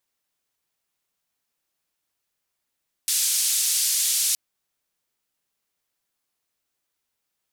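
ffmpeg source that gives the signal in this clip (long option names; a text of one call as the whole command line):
ffmpeg -f lavfi -i "anoisesrc=color=white:duration=1.27:sample_rate=44100:seed=1,highpass=frequency=4600,lowpass=frequency=11000,volume=-12.2dB" out.wav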